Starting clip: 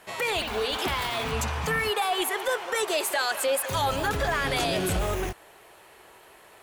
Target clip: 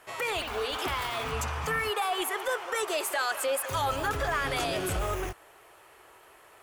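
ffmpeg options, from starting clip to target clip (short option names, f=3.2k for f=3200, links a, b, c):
-af "equalizer=f=200:t=o:w=0.33:g=-11,equalizer=f=1.25k:t=o:w=0.33:g=5,equalizer=f=4k:t=o:w=0.33:g=-4,volume=-3.5dB"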